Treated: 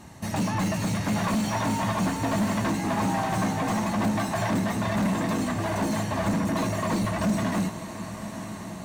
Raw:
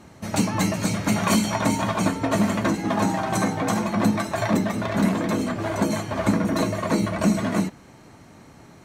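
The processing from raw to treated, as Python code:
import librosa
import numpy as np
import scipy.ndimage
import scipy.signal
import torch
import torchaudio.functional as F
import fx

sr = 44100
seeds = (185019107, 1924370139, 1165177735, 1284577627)

y = fx.high_shelf(x, sr, hz=5900.0, db=6.5)
y = y + 0.37 * np.pad(y, (int(1.1 * sr / 1000.0), 0))[:len(y)]
y = 10.0 ** (-21.0 / 20.0) * np.tanh(y / 10.0 ** (-21.0 / 20.0))
y = fx.echo_diffused(y, sr, ms=1022, feedback_pct=63, wet_db=-12)
y = fx.slew_limit(y, sr, full_power_hz=90.0)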